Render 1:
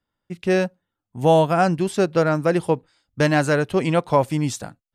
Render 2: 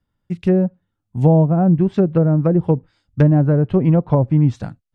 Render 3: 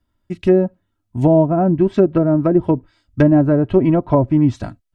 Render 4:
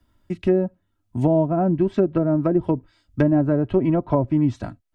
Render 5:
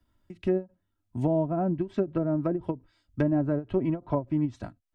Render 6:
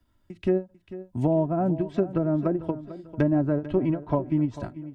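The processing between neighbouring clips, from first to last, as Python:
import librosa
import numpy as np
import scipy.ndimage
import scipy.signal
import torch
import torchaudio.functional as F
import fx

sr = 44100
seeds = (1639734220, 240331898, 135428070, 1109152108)

y1 = fx.env_lowpass_down(x, sr, base_hz=590.0, full_db=-14.5)
y1 = fx.bass_treble(y1, sr, bass_db=12, treble_db=-2)
y2 = y1 + 0.59 * np.pad(y1, (int(3.1 * sr / 1000.0), 0))[:len(y1)]
y2 = y2 * 10.0 ** (2.5 / 20.0)
y3 = fx.band_squash(y2, sr, depth_pct=40)
y3 = y3 * 10.0 ** (-5.5 / 20.0)
y4 = fx.end_taper(y3, sr, db_per_s=300.0)
y4 = y4 * 10.0 ** (-7.0 / 20.0)
y5 = fx.echo_feedback(y4, sr, ms=445, feedback_pct=38, wet_db=-15.0)
y5 = y5 * 10.0 ** (2.5 / 20.0)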